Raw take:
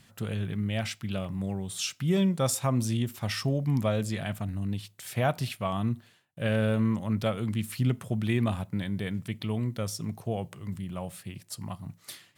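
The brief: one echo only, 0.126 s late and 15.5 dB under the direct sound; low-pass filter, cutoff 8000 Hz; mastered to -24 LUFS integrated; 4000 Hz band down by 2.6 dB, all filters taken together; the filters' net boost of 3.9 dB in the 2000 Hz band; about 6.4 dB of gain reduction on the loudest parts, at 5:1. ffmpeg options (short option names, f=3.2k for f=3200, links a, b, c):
-af "lowpass=8k,equalizer=f=2k:t=o:g=6.5,equalizer=f=4k:t=o:g=-6,acompressor=threshold=-28dB:ratio=5,aecho=1:1:126:0.168,volume=10dB"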